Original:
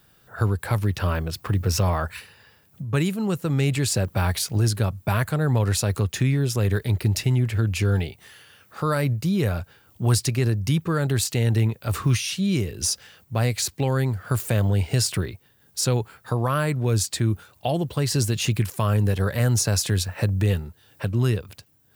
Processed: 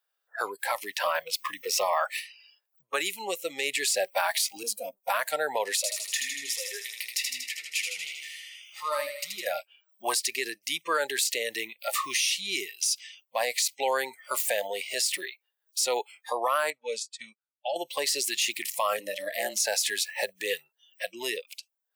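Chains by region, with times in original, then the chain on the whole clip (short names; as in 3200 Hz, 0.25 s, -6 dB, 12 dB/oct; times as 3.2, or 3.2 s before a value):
4.63–5.1 minimum comb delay 4.1 ms + bell 2400 Hz -13 dB 2.3 oct
5.76–9.47 compressor 2.5:1, threshold -29 dBFS + thinning echo 79 ms, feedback 72%, high-pass 230 Hz, level -4 dB
16.7–17.76 LPF 7800 Hz + notch comb 350 Hz + upward expander 2.5:1, over -38 dBFS
18.99–19.6 de-hum 55.35 Hz, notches 17 + ring modulator 97 Hz
whole clip: HPF 540 Hz 24 dB/oct; spectral noise reduction 27 dB; limiter -21 dBFS; gain +5 dB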